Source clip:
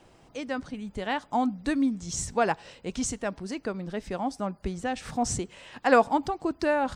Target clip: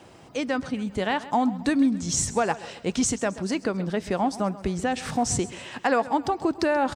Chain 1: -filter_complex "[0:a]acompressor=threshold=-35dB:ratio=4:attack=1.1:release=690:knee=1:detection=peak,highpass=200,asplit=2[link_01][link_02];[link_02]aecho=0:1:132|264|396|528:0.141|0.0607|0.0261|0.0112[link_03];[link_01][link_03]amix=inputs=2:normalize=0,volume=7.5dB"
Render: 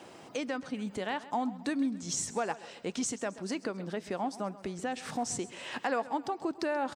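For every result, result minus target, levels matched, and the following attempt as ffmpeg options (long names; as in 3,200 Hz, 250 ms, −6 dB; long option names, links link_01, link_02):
downward compressor: peak gain reduction +8.5 dB; 125 Hz band −3.5 dB
-filter_complex "[0:a]acompressor=threshold=-23.5dB:ratio=4:attack=1.1:release=690:knee=1:detection=peak,highpass=200,asplit=2[link_01][link_02];[link_02]aecho=0:1:132|264|396|528:0.141|0.0607|0.0261|0.0112[link_03];[link_01][link_03]amix=inputs=2:normalize=0,volume=7.5dB"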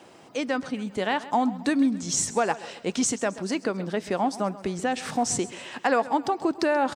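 125 Hz band −4.0 dB
-filter_complex "[0:a]acompressor=threshold=-23.5dB:ratio=4:attack=1.1:release=690:knee=1:detection=peak,highpass=75,asplit=2[link_01][link_02];[link_02]aecho=0:1:132|264|396|528:0.141|0.0607|0.0261|0.0112[link_03];[link_01][link_03]amix=inputs=2:normalize=0,volume=7.5dB"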